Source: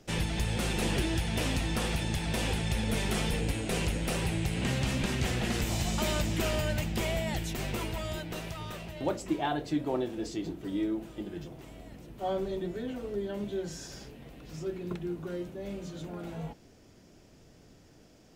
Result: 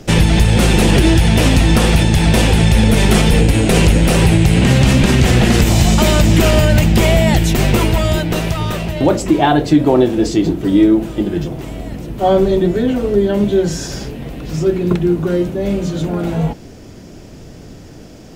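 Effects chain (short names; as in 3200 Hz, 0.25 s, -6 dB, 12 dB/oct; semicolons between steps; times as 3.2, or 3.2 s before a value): low shelf 480 Hz +5 dB; maximiser +18.5 dB; gain -1 dB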